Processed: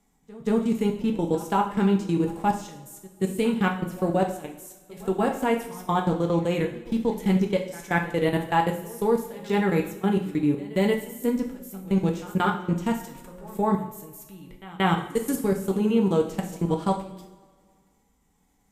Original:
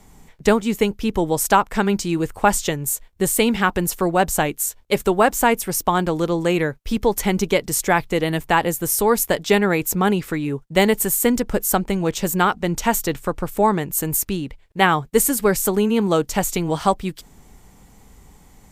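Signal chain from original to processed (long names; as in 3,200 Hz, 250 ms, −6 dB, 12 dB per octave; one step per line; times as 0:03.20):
parametric band 260 Hz +7.5 dB 0.22 octaves
notch filter 4,400 Hz, Q 30
hum removal 181.1 Hz, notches 3
harmonic and percussive parts rebalanced percussive −12 dB
low-shelf EQ 70 Hz −8 dB
output level in coarse steps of 23 dB
echo ahead of the sound 181 ms −20.5 dB
convolution reverb, pre-delay 3 ms, DRR 1.5 dB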